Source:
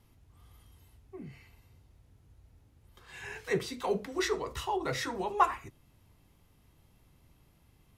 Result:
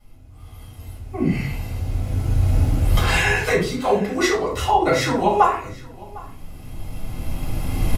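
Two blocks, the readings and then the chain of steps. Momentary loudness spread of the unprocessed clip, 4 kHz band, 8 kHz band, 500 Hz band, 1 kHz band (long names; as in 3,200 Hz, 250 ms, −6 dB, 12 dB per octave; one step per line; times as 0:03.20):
19 LU, +13.5 dB, +13.0 dB, +13.0 dB, +13.0 dB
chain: camcorder AGC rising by 12 dB per second
single-tap delay 755 ms −22 dB
rectangular room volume 210 cubic metres, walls furnished, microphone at 6.6 metres
level −2.5 dB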